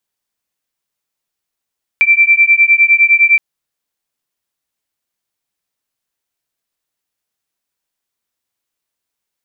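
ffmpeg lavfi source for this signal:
-f lavfi -i "aevalsrc='0.335*(sin(2*PI*2340*t)+sin(2*PI*2349.8*t))':d=1.37:s=44100"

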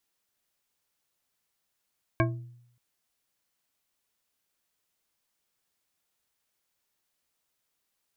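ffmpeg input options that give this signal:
-f lavfi -i "aevalsrc='0.0794*pow(10,-3*t/0.75)*sin(2*PI*121*t)+0.0708*pow(10,-3*t/0.369)*sin(2*PI*333.6*t)+0.0631*pow(10,-3*t/0.23)*sin(2*PI*653.9*t)+0.0562*pow(10,-3*t/0.162)*sin(2*PI*1080.9*t)+0.0501*pow(10,-3*t/0.122)*sin(2*PI*1614.1*t)+0.0447*pow(10,-3*t/0.097)*sin(2*PI*2255.4*t)':d=0.58:s=44100"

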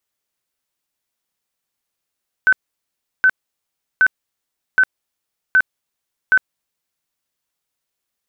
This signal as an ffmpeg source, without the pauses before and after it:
-f lavfi -i "aevalsrc='0.376*sin(2*PI*1520*mod(t,0.77))*lt(mod(t,0.77),85/1520)':d=4.62:s=44100"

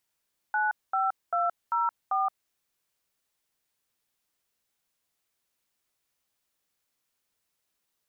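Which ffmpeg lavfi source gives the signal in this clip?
-f lavfi -i "aevalsrc='0.0501*clip(min(mod(t,0.393),0.172-mod(t,0.393))/0.002,0,1)*(eq(floor(t/0.393),0)*(sin(2*PI*852*mod(t,0.393))+sin(2*PI*1477*mod(t,0.393)))+eq(floor(t/0.393),1)*(sin(2*PI*770*mod(t,0.393))+sin(2*PI*1336*mod(t,0.393)))+eq(floor(t/0.393),2)*(sin(2*PI*697*mod(t,0.393))+sin(2*PI*1336*mod(t,0.393)))+eq(floor(t/0.393),3)*(sin(2*PI*941*mod(t,0.393))+sin(2*PI*1336*mod(t,0.393)))+eq(floor(t/0.393),4)*(sin(2*PI*770*mod(t,0.393))+sin(2*PI*1209*mod(t,0.393))))':d=1.965:s=44100"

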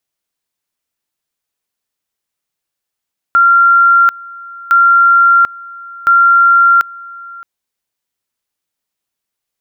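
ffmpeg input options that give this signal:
-f lavfi -i "aevalsrc='pow(10,(-4.5-23*gte(mod(t,1.36),0.74))/20)*sin(2*PI*1380*t)':d=4.08:s=44100"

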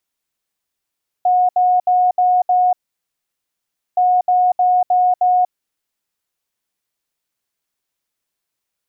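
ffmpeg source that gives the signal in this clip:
-f lavfi -i "aevalsrc='0.299*sin(2*PI*727*t)*clip(min(mod(mod(t,2.72),0.31),0.24-mod(mod(t,2.72),0.31))/0.005,0,1)*lt(mod(t,2.72),1.55)':d=5.44:s=44100"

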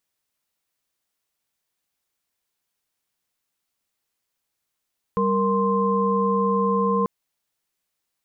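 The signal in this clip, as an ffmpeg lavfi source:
-f lavfi -i "aevalsrc='0.075*(sin(2*PI*196*t)+sin(2*PI*466.16*t)+sin(2*PI*1046.5*t))':d=1.89:s=44100"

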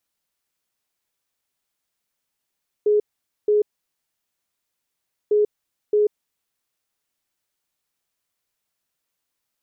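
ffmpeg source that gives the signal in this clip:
-f lavfi -i "aevalsrc='0.2*sin(2*PI*419*t)*clip(min(mod(mod(t,2.45),0.62),0.14-mod(mod(t,2.45),0.62))/0.005,0,1)*lt(mod(t,2.45),1.24)':d=4.9:s=44100"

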